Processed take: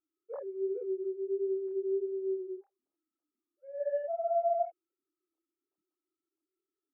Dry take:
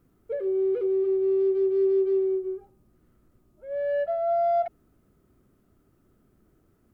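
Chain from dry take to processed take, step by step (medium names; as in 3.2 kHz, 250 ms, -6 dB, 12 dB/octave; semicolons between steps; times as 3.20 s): formants replaced by sine waves; peaking EQ 230 Hz -5.5 dB 1.4 oct; chorus voices 2, 1.3 Hz, delay 27 ms, depth 3.5 ms; treble shelf 2 kHz -7.5 dB; trim -3.5 dB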